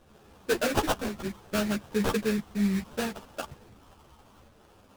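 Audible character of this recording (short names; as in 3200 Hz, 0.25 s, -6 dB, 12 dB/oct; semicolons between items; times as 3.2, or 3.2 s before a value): phasing stages 8, 0.67 Hz, lowest notch 450–1600 Hz; aliases and images of a low sample rate 2100 Hz, jitter 20%; a shimmering, thickened sound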